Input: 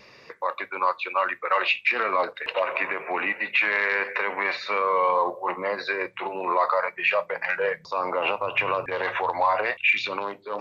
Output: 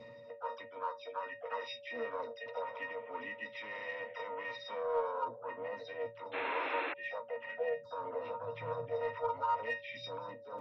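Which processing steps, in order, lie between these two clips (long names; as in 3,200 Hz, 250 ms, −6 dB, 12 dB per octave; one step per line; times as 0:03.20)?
resonances in every octave A#, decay 0.15 s
in parallel at −10 dB: soft clipping −33 dBFS, distortion −12 dB
on the sum: sound drawn into the spectrogram noise, 0:06.33–0:06.94, 260–2,800 Hz −36 dBFS
reversed playback
upward compression, threshold −38 dBFS
reversed playback
pitch-shifted copies added +5 semitones −12 dB, +7 semitones −17 dB
steady tone 570 Hz −48 dBFS
level −3 dB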